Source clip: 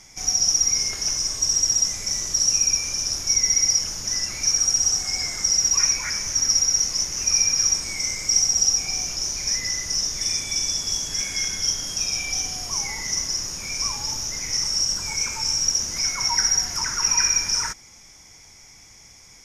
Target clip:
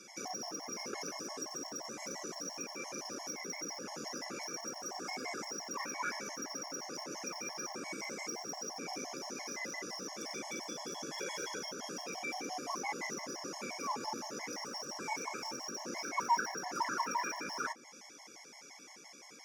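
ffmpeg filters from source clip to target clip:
ffmpeg -i in.wav -filter_complex "[0:a]highshelf=frequency=2000:gain=-11.5,asplit=2[link_01][link_02];[link_02]aeval=exprs='0.0266*(abs(mod(val(0)/0.0266+3,4)-2)-1)':channel_layout=same,volume=-7dB[link_03];[link_01][link_03]amix=inputs=2:normalize=0,highpass=frequency=240:width=0.5412,highpass=frequency=240:width=1.3066,acrossover=split=490|1800[link_04][link_05][link_06];[link_06]acompressor=threshold=-45dB:ratio=5[link_07];[link_04][link_05][link_07]amix=inputs=3:normalize=0,asettb=1/sr,asplit=3[link_08][link_09][link_10];[link_08]atrim=end=11.174[link_11];[link_09]atrim=start=11.17:end=11.59,asetpts=PTS-STARTPTS,afade=type=in:duration=0.004:curve=qsin,afade=type=out:start_time=0.416:duration=0.004:curve=qsin,aecho=1:1:2.1:0.93,atrim=end_sample=18522[link_12];[link_10]atrim=start=11.586[link_13];[link_11][link_12]acrossfade=duration=0.004:curve1=hsin:curve2=qsin[link_14];[link_14][link_13]acrossfade=duration=0.004:curve1=qsin:curve2=hsin,afftfilt=real='re*gt(sin(2*PI*5.8*pts/sr)*(1-2*mod(floor(b*sr/1024/560),2)),0)':imag='im*gt(sin(2*PI*5.8*pts/sr)*(1-2*mod(floor(b*sr/1024/560),2)),0)':win_size=1024:overlap=0.75,volume=3dB" out.wav

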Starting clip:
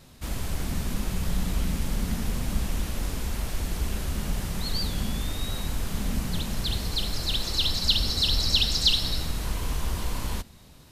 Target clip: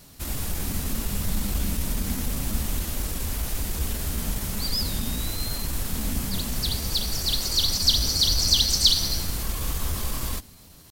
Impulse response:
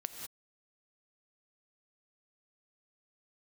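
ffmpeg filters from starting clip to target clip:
-af "crystalizer=i=1.5:c=0,asetrate=48091,aresample=44100,atempo=0.917004"

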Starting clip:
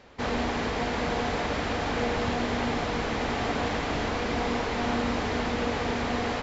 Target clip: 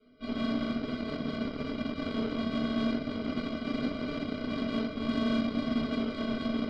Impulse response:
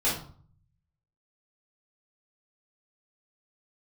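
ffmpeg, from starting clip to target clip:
-filter_complex "[0:a]areverse,acompressor=mode=upward:threshold=-33dB:ratio=2.5,areverse,asplit=3[link_01][link_02][link_03];[link_01]bandpass=frequency=270:width_type=q:width=8,volume=0dB[link_04];[link_02]bandpass=frequency=2290:width_type=q:width=8,volume=-6dB[link_05];[link_03]bandpass=frequency=3010:width_type=q:width=8,volume=-9dB[link_06];[link_04][link_05][link_06]amix=inputs=3:normalize=0,aresample=11025,acrusher=samples=12:mix=1:aa=0.000001,aresample=44100,asetrate=42336,aresample=44100[link_07];[1:a]atrim=start_sample=2205,asetrate=41454,aresample=44100[link_08];[link_07][link_08]afir=irnorm=-1:irlink=0,aeval=exprs='0.224*(cos(1*acos(clip(val(0)/0.224,-1,1)))-cos(1*PI/2))+0.0126*(cos(7*acos(clip(val(0)/0.224,-1,1)))-cos(7*PI/2))':channel_layout=same,volume=-6dB"

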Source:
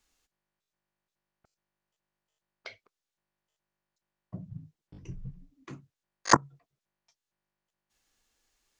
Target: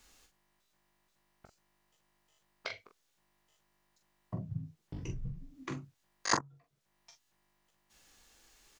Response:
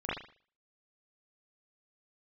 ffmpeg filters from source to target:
-filter_complex "[0:a]asplit=2[link_01][link_02];[link_02]alimiter=limit=-10dB:level=0:latency=1:release=183,volume=-0.5dB[link_03];[link_01][link_03]amix=inputs=2:normalize=0,acompressor=threshold=-48dB:ratio=2,aecho=1:1:19|43:0.335|0.422,volume=5dB"

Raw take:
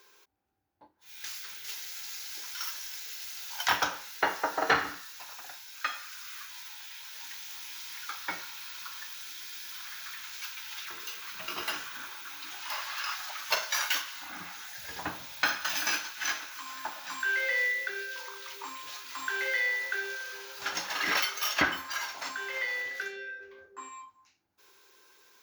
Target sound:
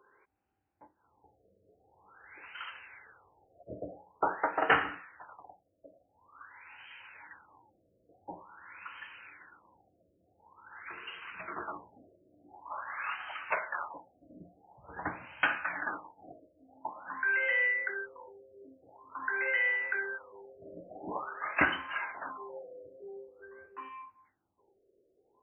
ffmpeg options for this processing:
ffmpeg -i in.wav -af "afftfilt=real='re*lt(b*sr/1024,670*pow(3200/670,0.5+0.5*sin(2*PI*0.47*pts/sr)))':imag='im*lt(b*sr/1024,670*pow(3200/670,0.5+0.5*sin(2*PI*0.47*pts/sr)))':win_size=1024:overlap=0.75" out.wav

